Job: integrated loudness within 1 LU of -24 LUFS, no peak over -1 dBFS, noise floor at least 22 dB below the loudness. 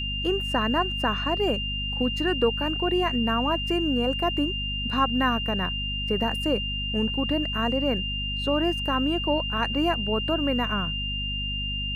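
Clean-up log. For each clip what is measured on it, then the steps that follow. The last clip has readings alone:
hum 50 Hz; harmonics up to 250 Hz; hum level -30 dBFS; steady tone 2800 Hz; tone level -29 dBFS; loudness -25.0 LUFS; peak -10.0 dBFS; loudness target -24.0 LUFS
-> de-hum 50 Hz, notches 5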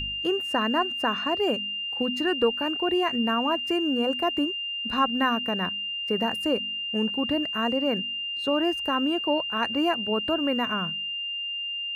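hum none; steady tone 2800 Hz; tone level -29 dBFS
-> notch 2800 Hz, Q 30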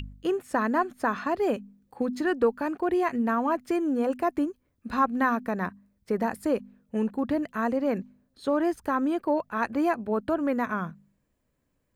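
steady tone none; loudness -28.0 LUFS; peak -11.0 dBFS; loudness target -24.0 LUFS
-> gain +4 dB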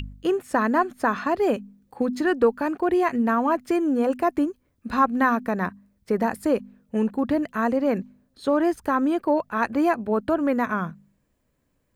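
loudness -24.0 LUFS; peak -7.0 dBFS; noise floor -71 dBFS

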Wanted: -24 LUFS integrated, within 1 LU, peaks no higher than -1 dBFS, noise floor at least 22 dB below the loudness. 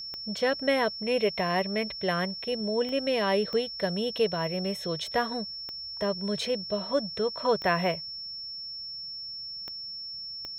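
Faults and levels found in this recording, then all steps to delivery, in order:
clicks 7; steady tone 5400 Hz; tone level -36 dBFS; loudness -29.5 LUFS; peak -12.5 dBFS; loudness target -24.0 LUFS
-> de-click; notch 5400 Hz, Q 30; gain +5.5 dB

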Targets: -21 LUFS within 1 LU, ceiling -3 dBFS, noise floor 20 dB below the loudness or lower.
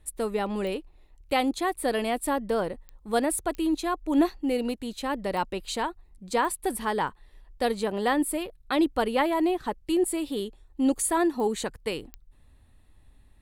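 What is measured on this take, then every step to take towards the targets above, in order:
clicks 7; loudness -28.0 LUFS; peak -12.5 dBFS; loudness target -21.0 LUFS
-> de-click; gain +7 dB

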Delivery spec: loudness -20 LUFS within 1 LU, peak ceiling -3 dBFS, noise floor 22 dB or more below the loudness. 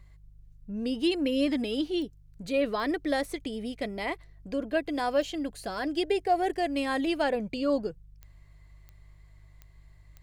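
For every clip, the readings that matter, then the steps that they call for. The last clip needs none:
clicks 8; hum 50 Hz; harmonics up to 150 Hz; hum level -51 dBFS; loudness -30.0 LUFS; peak -14.5 dBFS; loudness target -20.0 LUFS
-> de-click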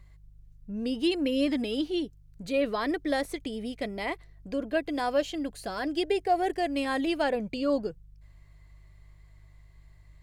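clicks 0; hum 50 Hz; harmonics up to 150 Hz; hum level -51 dBFS
-> de-hum 50 Hz, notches 3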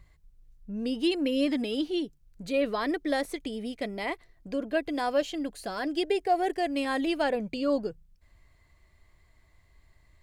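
hum none; loudness -30.0 LUFS; peak -15.0 dBFS; loudness target -20.0 LUFS
-> gain +10 dB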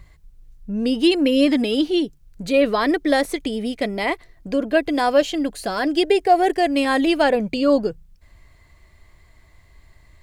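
loudness -20.0 LUFS; peak -5.0 dBFS; noise floor -53 dBFS

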